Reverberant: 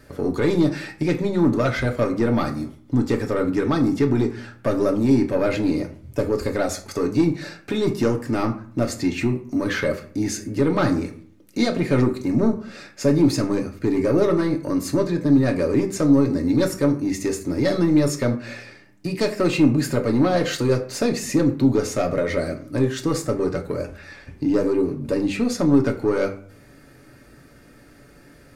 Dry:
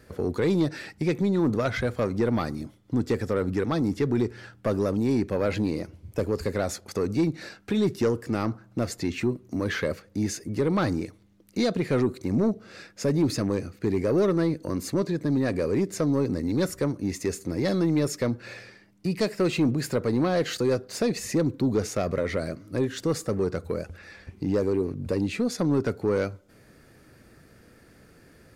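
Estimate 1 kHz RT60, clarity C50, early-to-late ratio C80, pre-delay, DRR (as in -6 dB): 0.50 s, 13.0 dB, 16.0 dB, 3 ms, 2.0 dB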